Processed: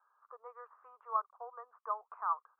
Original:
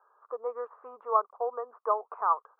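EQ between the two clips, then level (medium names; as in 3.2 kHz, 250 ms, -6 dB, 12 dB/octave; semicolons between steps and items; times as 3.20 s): high-pass 1.4 kHz 12 dB/octave; distance through air 400 m; 0.0 dB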